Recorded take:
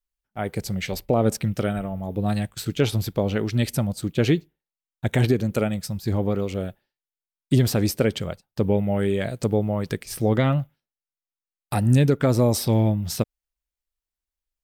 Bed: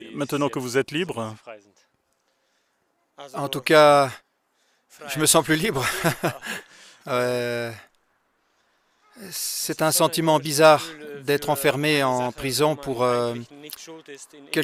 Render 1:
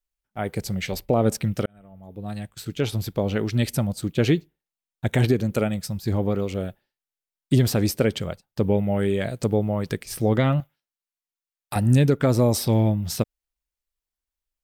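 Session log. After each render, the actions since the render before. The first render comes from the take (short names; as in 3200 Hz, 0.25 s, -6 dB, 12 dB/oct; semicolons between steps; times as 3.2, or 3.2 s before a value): 1.66–3.41 fade in; 10.6–11.76 low shelf 400 Hz -11.5 dB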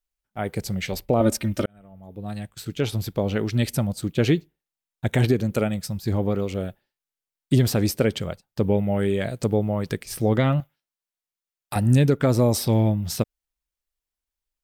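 1.2–1.64 comb 3.3 ms, depth 89%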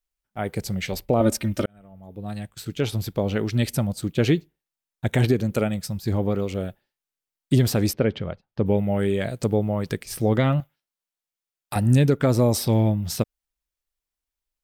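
7.93–8.66 air absorption 270 m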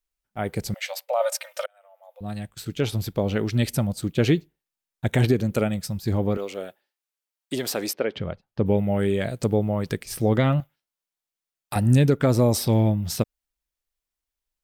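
0.74–2.21 brick-wall FIR high-pass 500 Hz; 6.37–8.16 HPF 420 Hz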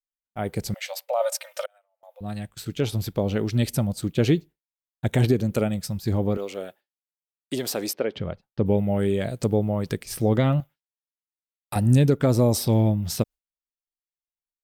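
gate with hold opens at -43 dBFS; dynamic EQ 1800 Hz, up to -4 dB, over -38 dBFS, Q 0.85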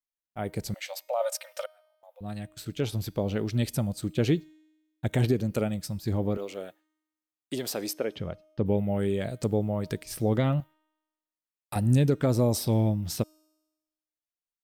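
resonator 310 Hz, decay 1.1 s, mix 40%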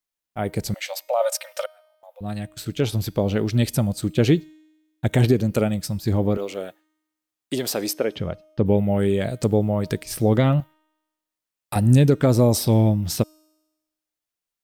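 gain +7 dB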